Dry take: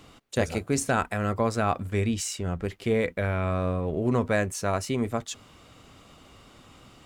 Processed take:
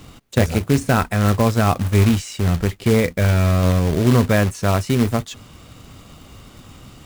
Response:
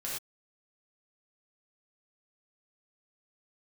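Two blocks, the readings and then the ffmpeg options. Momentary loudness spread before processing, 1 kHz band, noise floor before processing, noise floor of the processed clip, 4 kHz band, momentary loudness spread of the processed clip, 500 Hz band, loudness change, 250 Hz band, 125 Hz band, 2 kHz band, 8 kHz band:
6 LU, +6.0 dB, -54 dBFS, -45 dBFS, +9.0 dB, 5 LU, +6.5 dB, +9.5 dB, +10.0 dB, +13.0 dB, +6.5 dB, +3.5 dB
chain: -filter_complex "[0:a]acrossover=split=3900[a][b];[b]acompressor=threshold=-44dB:ratio=4:attack=1:release=60[c];[a][c]amix=inputs=2:normalize=0,bass=f=250:g=8,treble=f=4k:g=3,acrusher=bits=3:mode=log:mix=0:aa=0.000001,volume=5.5dB"

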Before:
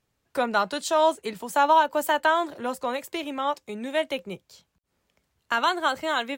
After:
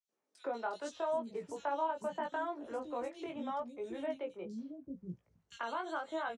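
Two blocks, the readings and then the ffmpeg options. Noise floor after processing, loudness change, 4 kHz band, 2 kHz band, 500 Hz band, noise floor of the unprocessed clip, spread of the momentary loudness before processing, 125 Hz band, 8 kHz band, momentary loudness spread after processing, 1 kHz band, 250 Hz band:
-85 dBFS, -14.5 dB, -21.5 dB, -17.5 dB, -11.5 dB, -76 dBFS, 13 LU, n/a, -19.5 dB, 11 LU, -15.5 dB, -10.0 dB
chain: -filter_complex "[0:a]highpass=64,acrossover=split=630[a][b];[a]aeval=exprs='val(0)*(1-0.5/2+0.5/2*cos(2*PI*4.8*n/s))':c=same[c];[b]aeval=exprs='val(0)*(1-0.5/2-0.5/2*cos(2*PI*4.8*n/s))':c=same[d];[c][d]amix=inputs=2:normalize=0,lowpass=f=9.1k:w=0.5412,lowpass=f=9.1k:w=1.3066,tiltshelf=f=1.1k:g=7,acrossover=split=280|3400[e][f][g];[f]adelay=90[h];[e]adelay=760[i];[i][h][g]amix=inputs=3:normalize=0,flanger=delay=0.3:depth=1.9:regen=85:speed=0.36:shape=sinusoidal,acompressor=threshold=-38dB:ratio=2,equalizer=f=5.9k:w=4.9:g=5,flanger=delay=17:depth=5.2:speed=0.78,volume=1.5dB"

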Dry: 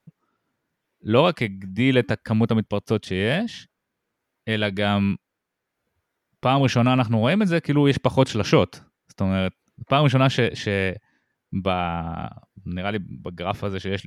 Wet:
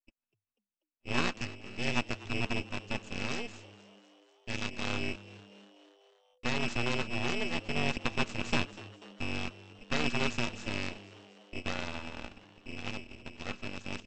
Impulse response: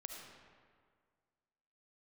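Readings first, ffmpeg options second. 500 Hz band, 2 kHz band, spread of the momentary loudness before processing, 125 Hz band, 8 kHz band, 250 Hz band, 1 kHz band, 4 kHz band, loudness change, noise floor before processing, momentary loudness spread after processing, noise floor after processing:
-17.0 dB, -7.0 dB, 13 LU, -17.5 dB, -3.5 dB, -15.5 dB, -13.5 dB, -8.0 dB, -13.0 dB, -81 dBFS, 17 LU, under -85 dBFS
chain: -filter_complex "[0:a]aeval=exprs='val(0)*sin(2*PI*1300*n/s)':c=same,equalizer=f=85:t=o:w=0.47:g=9.5,agate=range=-16dB:threshold=-47dB:ratio=16:detection=peak,aresample=16000,aeval=exprs='abs(val(0))':c=same,aresample=44100,tremolo=f=240:d=0.824,asplit=6[a][b][c][d][e][f];[b]adelay=244,afreqshift=100,volume=-19dB[g];[c]adelay=488,afreqshift=200,volume=-23.3dB[h];[d]adelay=732,afreqshift=300,volume=-27.6dB[i];[e]adelay=976,afreqshift=400,volume=-31.9dB[j];[f]adelay=1220,afreqshift=500,volume=-36.2dB[k];[a][g][h][i][j][k]amix=inputs=6:normalize=0,volume=-5.5dB"

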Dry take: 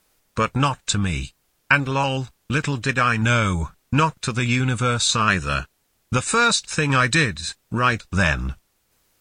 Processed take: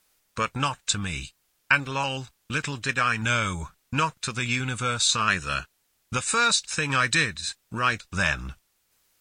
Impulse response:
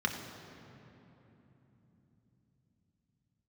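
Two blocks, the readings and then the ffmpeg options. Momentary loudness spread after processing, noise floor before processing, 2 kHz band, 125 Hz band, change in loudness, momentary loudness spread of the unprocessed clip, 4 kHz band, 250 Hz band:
11 LU, -68 dBFS, -3.5 dB, -9.5 dB, -4.5 dB, 10 LU, -2.0 dB, -9.0 dB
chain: -af "tiltshelf=f=970:g=-4,volume=-5.5dB"

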